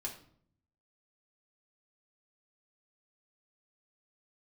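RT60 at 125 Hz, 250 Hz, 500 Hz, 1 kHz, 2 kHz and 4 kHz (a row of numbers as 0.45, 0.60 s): 1.1, 0.90, 0.65, 0.55, 0.45, 0.40 s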